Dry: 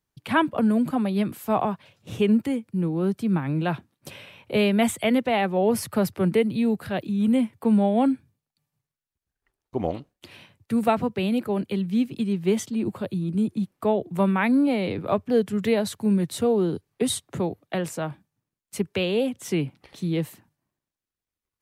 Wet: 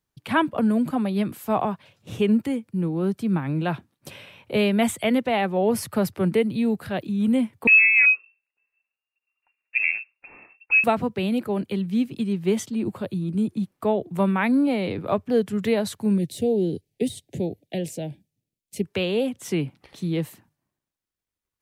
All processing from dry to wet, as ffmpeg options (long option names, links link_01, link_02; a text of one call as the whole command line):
ffmpeg -i in.wav -filter_complex "[0:a]asettb=1/sr,asplit=3[link_01][link_02][link_03];[link_01]atrim=end=7.674[link_04];[link_02]atrim=start=7.67:end=10.84,asetpts=PTS-STARTPTS,afade=type=in:duration=0.004:curve=qsin,afade=type=out:start_time=3.166:duration=0.004:curve=qsin,lowshelf=frequency=370:gain=6,lowpass=frequency=2400:width_type=q:width=0.5098,lowpass=frequency=2400:width_type=q:width=0.6013,lowpass=frequency=2400:width_type=q:width=0.9,lowpass=frequency=2400:width_type=q:width=2.563,afreqshift=-2800[link_05];[link_03]atrim=start=10.836[link_06];[link_04][link_05]acrossfade=duration=0.004:curve1=hsin:curve2=qsin[link_07];[link_07][link_06]acrossfade=duration=0.004:curve1=qsin:curve2=hsin,asettb=1/sr,asplit=3[link_08][link_09][link_10];[link_08]atrim=end=16.184[link_11];[link_09]atrim=start=16.18:end=18.84,asetpts=PTS-STARTPTS,afade=type=in:duration=0.004:curve=qsin,afade=type=out:start_time=2.656:duration=0.004:curve=qsin,deesser=0.65,asuperstop=centerf=1200:order=4:qfactor=0.71[link_12];[link_10]atrim=start=18.836[link_13];[link_11][link_12]acrossfade=duration=0.004:curve1=hsin:curve2=qsin[link_14];[link_14][link_13]acrossfade=duration=0.004:curve1=qsin:curve2=hsin" out.wav